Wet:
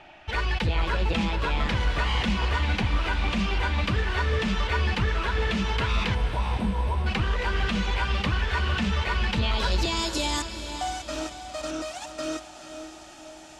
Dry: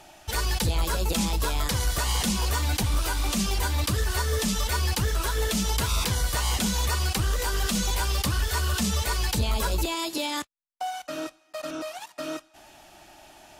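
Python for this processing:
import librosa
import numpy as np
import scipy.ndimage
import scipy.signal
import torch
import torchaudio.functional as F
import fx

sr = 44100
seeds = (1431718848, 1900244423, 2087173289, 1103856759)

y = fx.spec_erase(x, sr, start_s=6.15, length_s=0.91, low_hz=1100.0, high_hz=7800.0)
y = fx.filter_sweep_lowpass(y, sr, from_hz=2500.0, to_hz=7500.0, start_s=9.28, end_s=10.17, q=1.8)
y = fx.echo_diffused(y, sr, ms=475, feedback_pct=53, wet_db=-9.0)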